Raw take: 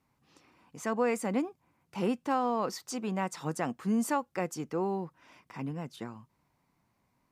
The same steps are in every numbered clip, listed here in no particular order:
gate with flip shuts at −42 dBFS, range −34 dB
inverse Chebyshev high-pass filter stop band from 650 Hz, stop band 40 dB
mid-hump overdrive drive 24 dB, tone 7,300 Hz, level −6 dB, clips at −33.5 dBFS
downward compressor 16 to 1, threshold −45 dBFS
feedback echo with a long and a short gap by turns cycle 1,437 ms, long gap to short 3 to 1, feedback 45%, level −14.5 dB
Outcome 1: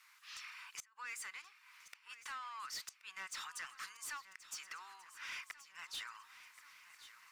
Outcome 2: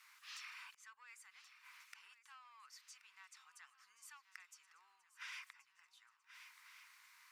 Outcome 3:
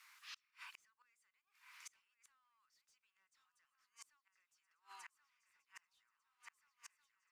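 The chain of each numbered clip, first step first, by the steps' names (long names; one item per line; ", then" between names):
downward compressor, then inverse Chebyshev high-pass filter, then gate with flip, then mid-hump overdrive, then feedback echo with a long and a short gap by turns
gate with flip, then mid-hump overdrive, then feedback echo with a long and a short gap by turns, then downward compressor, then inverse Chebyshev high-pass filter
feedback echo with a long and a short gap by turns, then downward compressor, then inverse Chebyshev high-pass filter, then mid-hump overdrive, then gate with flip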